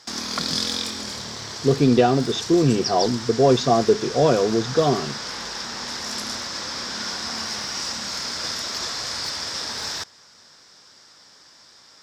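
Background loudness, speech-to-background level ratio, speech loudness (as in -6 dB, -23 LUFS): -28.0 LUFS, 8.0 dB, -20.0 LUFS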